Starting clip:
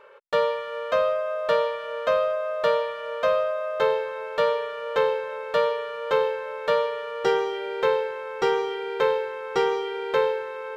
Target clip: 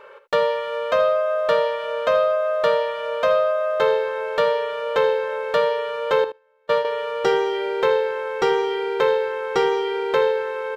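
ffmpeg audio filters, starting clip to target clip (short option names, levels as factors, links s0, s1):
-filter_complex "[0:a]asettb=1/sr,asplit=3[s0][s1][s2];[s0]atrim=end=6.244[s3];[s1]atrim=start=6.24:end=6.85,asetpts=PTS-STARTPTS,afade=t=in:d=0.004:c=qsin,afade=t=out:st=0.606:d=0.004:c=qsin,agate=range=0.0158:threshold=0.0891:ratio=16:detection=peak[s4];[s2]atrim=start=6.846[s5];[s3][s4]acrossfade=d=0.004:c1=hsin:c2=qsin[s6];[s6][s5]acrossfade=d=0.004:c1=qsin:c2=hsin,aecho=1:1:61|77:0.168|0.2,asplit=2[s7][s8];[s8]acompressor=threshold=0.0398:ratio=6,volume=1.06[s9];[s7][s9]amix=inputs=2:normalize=0"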